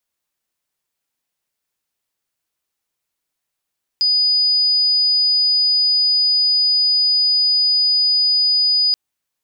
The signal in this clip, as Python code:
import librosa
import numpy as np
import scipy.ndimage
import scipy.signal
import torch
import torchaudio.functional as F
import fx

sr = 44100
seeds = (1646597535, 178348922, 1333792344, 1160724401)

y = 10.0 ** (-12.5 / 20.0) * np.sin(2.0 * np.pi * (4950.0 * (np.arange(round(4.93 * sr)) / sr)))